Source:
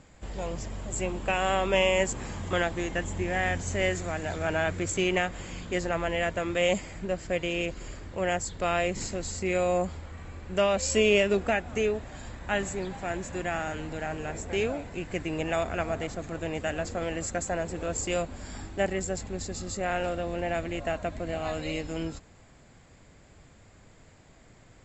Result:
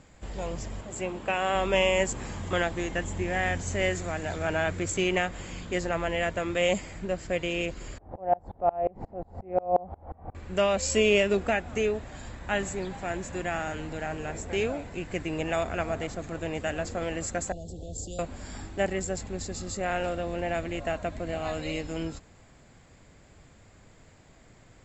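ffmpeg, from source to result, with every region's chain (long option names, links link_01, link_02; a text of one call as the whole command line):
ffmpeg -i in.wav -filter_complex "[0:a]asettb=1/sr,asplit=3[link_01][link_02][link_03];[link_01]atrim=end=0.814[link_04];[link_02]atrim=start=0.81:end=1.55,asetpts=PTS-STARTPTS,afade=type=in:duration=0.004:curve=qsin,afade=type=out:start_time=0.736:duration=0.004:curve=qsin,highpass=frequency=180:poles=1,highshelf=frequency=6500:gain=-9.5[link_05];[link_03]atrim=start=1.546[link_06];[link_04][link_05]acrossfade=duration=0.004:curve1=hsin:curve2=qsin[link_07];[link_07][link_06]acrossfade=duration=0.004:curve1=qsin:curve2=hsin,asettb=1/sr,asplit=3[link_08][link_09][link_10];[link_08]atrim=end=7.984[link_11];[link_09]atrim=start=7.98:end=10.35,asetpts=PTS-STARTPTS,afade=type=in:duration=0.004:curve=qsin,afade=type=out:start_time=2.366:duration=0.004:curve=qsin,lowpass=frequency=760:width_type=q:width=5,acompressor=mode=upward:threshold=-25dB:ratio=2.5:attack=3.2:release=140:knee=2.83:detection=peak,aeval=exprs='val(0)*pow(10,-29*if(lt(mod(-5.6*n/s,1),2*abs(-5.6)/1000),1-mod(-5.6*n/s,1)/(2*abs(-5.6)/1000),(mod(-5.6*n/s,1)-2*abs(-5.6)/1000)/(1-2*abs(-5.6)/1000))/20)':channel_layout=same[link_12];[link_10]atrim=start=10.346[link_13];[link_11][link_12]acrossfade=duration=0.004:curve1=hsin:curve2=qsin[link_14];[link_14][link_13]acrossfade=duration=0.004:curve1=qsin:curve2=hsin,asettb=1/sr,asplit=3[link_15][link_16][link_17];[link_15]atrim=end=17.524[link_18];[link_16]atrim=start=17.52:end=18.19,asetpts=PTS-STARTPTS,afade=type=in:duration=0.004:curve=qsin,afade=type=out:start_time=0.666:duration=0.004:curve=qsin,highshelf=frequency=6400:gain=-10,acrossover=split=160|3000[link_19][link_20][link_21];[link_20]acompressor=threshold=-46dB:ratio=2.5:attack=3.2:release=140:knee=2.83:detection=peak[link_22];[link_19][link_22][link_21]amix=inputs=3:normalize=0,asuperstop=centerf=1600:order=12:qfactor=0.64[link_23];[link_17]atrim=start=18.186[link_24];[link_18][link_23]acrossfade=duration=0.004:curve1=hsin:curve2=qsin[link_25];[link_25][link_24]acrossfade=duration=0.004:curve1=qsin:curve2=hsin" out.wav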